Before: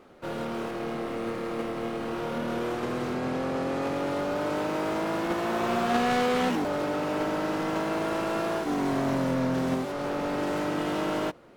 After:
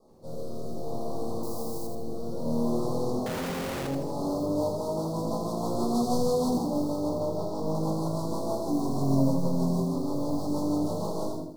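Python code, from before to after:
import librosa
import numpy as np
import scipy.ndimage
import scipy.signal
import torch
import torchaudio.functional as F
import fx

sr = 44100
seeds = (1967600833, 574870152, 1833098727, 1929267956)

y = fx.self_delay(x, sr, depth_ms=0.12)
y = fx.peak_eq(y, sr, hz=11000.0, db=6.5, octaves=1.9)
y = fx.room_shoebox(y, sr, seeds[0], volume_m3=410.0, walls='furnished', distance_m=5.5)
y = fx.rotary_switch(y, sr, hz=0.6, then_hz=6.3, switch_at_s=4.05)
y = fx.quant_dither(y, sr, seeds[1], bits=6, dither='triangular', at=(1.43, 1.87))
y = fx.air_absorb(y, sr, metres=66.0, at=(7.09, 7.75))
y = fx.mod_noise(y, sr, seeds[2], snr_db=30)
y = scipy.signal.sosfilt(scipy.signal.ellip(3, 1.0, 50, [1000.0, 4400.0], 'bandstop', fs=sr, output='sos'), y)
y = fx.schmitt(y, sr, flips_db=-37.0, at=(3.26, 3.87))
y = fx.echo_crushed(y, sr, ms=81, feedback_pct=35, bits=11, wet_db=-5.5)
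y = y * librosa.db_to_amplitude(-8.5)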